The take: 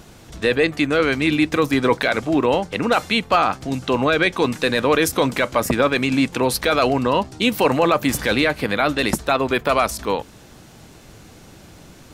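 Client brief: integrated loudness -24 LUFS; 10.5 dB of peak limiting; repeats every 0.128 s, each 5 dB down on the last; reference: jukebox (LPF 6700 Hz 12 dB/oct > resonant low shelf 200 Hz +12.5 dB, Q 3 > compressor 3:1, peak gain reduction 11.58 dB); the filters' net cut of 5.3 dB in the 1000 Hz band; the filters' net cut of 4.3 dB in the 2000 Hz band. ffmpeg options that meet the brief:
-af "equalizer=f=1k:t=o:g=-5,equalizer=f=2k:t=o:g=-4,alimiter=limit=-17.5dB:level=0:latency=1,lowpass=6.7k,lowshelf=f=200:t=q:w=3:g=12.5,aecho=1:1:128|256|384|512|640|768|896:0.562|0.315|0.176|0.0988|0.0553|0.031|0.0173,acompressor=threshold=-24dB:ratio=3,volume=2.5dB"

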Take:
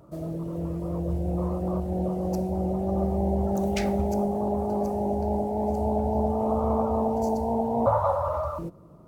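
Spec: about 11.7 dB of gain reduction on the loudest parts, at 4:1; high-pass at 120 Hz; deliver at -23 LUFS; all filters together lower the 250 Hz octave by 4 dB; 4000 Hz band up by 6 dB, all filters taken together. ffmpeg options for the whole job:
-af "highpass=120,equalizer=f=250:t=o:g=-5,equalizer=f=4k:t=o:g=8,acompressor=threshold=-33dB:ratio=4,volume=13dB"

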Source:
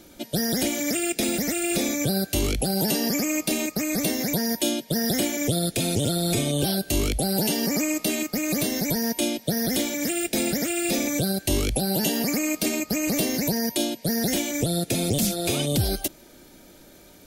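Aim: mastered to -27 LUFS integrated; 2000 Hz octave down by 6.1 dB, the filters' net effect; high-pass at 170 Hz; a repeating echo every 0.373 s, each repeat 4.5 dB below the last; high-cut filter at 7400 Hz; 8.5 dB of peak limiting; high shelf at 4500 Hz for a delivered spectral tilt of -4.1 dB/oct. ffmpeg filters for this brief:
-af "highpass=170,lowpass=7.4k,equalizer=f=2k:t=o:g=-9,highshelf=f=4.5k:g=4.5,alimiter=limit=-20.5dB:level=0:latency=1,aecho=1:1:373|746|1119|1492|1865|2238|2611|2984|3357:0.596|0.357|0.214|0.129|0.0772|0.0463|0.0278|0.0167|0.01,volume=0.5dB"

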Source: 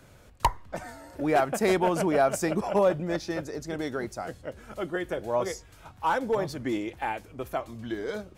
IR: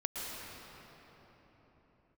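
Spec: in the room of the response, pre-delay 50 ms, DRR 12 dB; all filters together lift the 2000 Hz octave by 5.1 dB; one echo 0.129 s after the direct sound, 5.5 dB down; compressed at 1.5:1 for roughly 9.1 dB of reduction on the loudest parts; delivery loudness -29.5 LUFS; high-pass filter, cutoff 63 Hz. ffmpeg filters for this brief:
-filter_complex "[0:a]highpass=63,equalizer=f=2k:t=o:g=6.5,acompressor=threshold=-43dB:ratio=1.5,aecho=1:1:129:0.531,asplit=2[a][b];[1:a]atrim=start_sample=2205,adelay=50[c];[b][c]afir=irnorm=-1:irlink=0,volume=-15.5dB[d];[a][d]amix=inputs=2:normalize=0,volume=5dB"

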